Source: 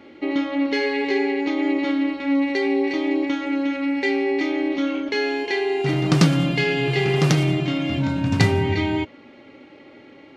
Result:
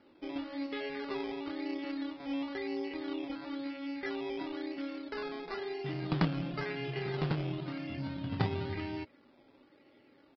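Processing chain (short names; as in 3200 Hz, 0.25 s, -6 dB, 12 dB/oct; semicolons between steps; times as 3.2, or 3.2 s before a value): added harmonics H 3 -14 dB, 6 -36 dB, 8 -39 dB, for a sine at -2 dBFS; decimation with a swept rate 12×, swing 60% 0.98 Hz; downsampling 11025 Hz; gain -8.5 dB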